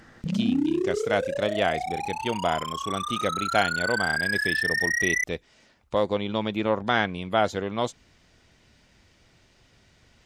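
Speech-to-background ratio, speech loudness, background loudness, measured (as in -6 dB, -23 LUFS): -1.5 dB, -28.5 LUFS, -27.0 LUFS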